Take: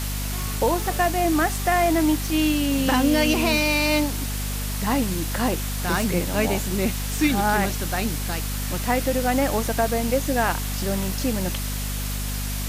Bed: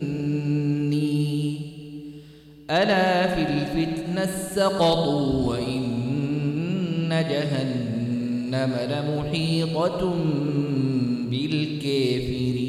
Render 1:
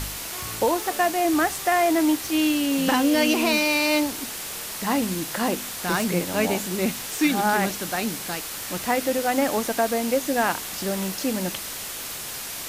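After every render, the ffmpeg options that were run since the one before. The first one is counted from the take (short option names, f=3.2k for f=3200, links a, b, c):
-af "bandreject=f=50:t=h:w=4,bandreject=f=100:t=h:w=4,bandreject=f=150:t=h:w=4,bandreject=f=200:t=h:w=4,bandreject=f=250:t=h:w=4"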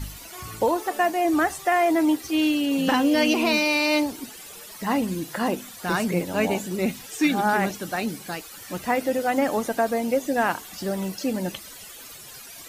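-af "afftdn=nr=14:nf=-34"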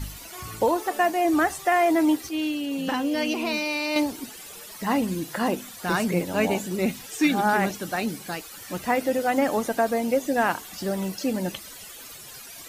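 -filter_complex "[0:a]asplit=3[a][b][c];[a]atrim=end=2.292[d];[b]atrim=start=2.288:end=3.962,asetpts=PTS-STARTPTS,volume=-5.5dB[e];[c]atrim=start=3.958[f];[d][e]acrossfade=d=0.004:c1=hsin:c2=hsin[g];[g][f]acrossfade=d=0.004:c1=hsin:c2=hsin"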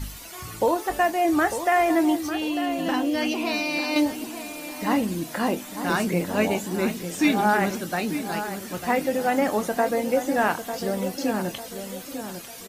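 -filter_complex "[0:a]asplit=2[a][b];[b]adelay=24,volume=-11.5dB[c];[a][c]amix=inputs=2:normalize=0,asplit=2[d][e];[e]adelay=898,lowpass=f=2k:p=1,volume=-9dB,asplit=2[f][g];[g]adelay=898,lowpass=f=2k:p=1,volume=0.42,asplit=2[h][i];[i]adelay=898,lowpass=f=2k:p=1,volume=0.42,asplit=2[j][k];[k]adelay=898,lowpass=f=2k:p=1,volume=0.42,asplit=2[l][m];[m]adelay=898,lowpass=f=2k:p=1,volume=0.42[n];[f][h][j][l][n]amix=inputs=5:normalize=0[o];[d][o]amix=inputs=2:normalize=0"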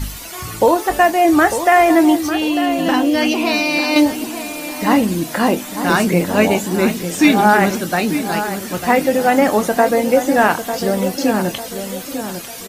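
-af "volume=9dB,alimiter=limit=-1dB:level=0:latency=1"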